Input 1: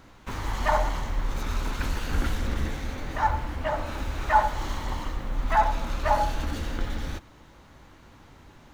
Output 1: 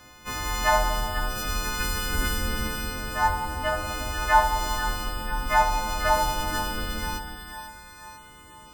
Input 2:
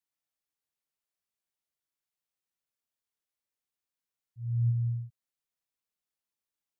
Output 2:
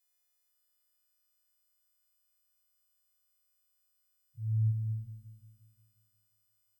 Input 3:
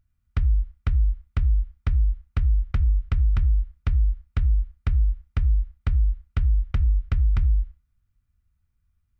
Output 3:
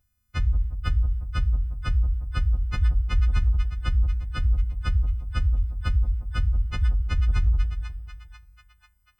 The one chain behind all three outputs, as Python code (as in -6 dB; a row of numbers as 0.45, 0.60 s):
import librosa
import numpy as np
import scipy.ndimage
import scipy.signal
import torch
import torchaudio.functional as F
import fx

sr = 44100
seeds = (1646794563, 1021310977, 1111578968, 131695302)

y = fx.freq_snap(x, sr, grid_st=3)
y = fx.echo_split(y, sr, split_hz=900.0, low_ms=177, high_ms=492, feedback_pct=52, wet_db=-8)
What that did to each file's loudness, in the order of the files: +2.5, -2.0, -1.0 LU